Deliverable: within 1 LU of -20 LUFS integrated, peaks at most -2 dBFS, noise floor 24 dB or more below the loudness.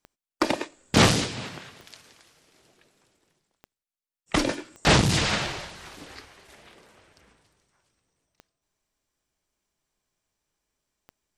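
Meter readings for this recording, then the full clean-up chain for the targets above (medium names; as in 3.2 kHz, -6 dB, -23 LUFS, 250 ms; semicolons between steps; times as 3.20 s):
clicks found 6; loudness -24.0 LUFS; peak level -6.5 dBFS; loudness target -20.0 LUFS
-> de-click; trim +4 dB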